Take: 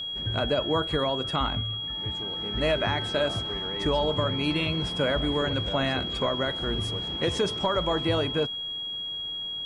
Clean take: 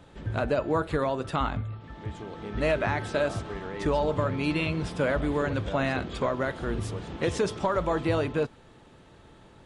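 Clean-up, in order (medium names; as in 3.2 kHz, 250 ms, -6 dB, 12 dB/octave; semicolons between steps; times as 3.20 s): band-stop 3.3 kHz, Q 30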